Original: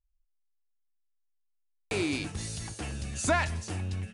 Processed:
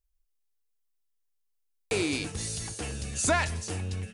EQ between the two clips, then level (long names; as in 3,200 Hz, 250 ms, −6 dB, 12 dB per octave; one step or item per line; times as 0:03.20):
parametric band 460 Hz +9 dB 0.21 octaves
high-shelf EQ 4,300 Hz +7 dB
0.0 dB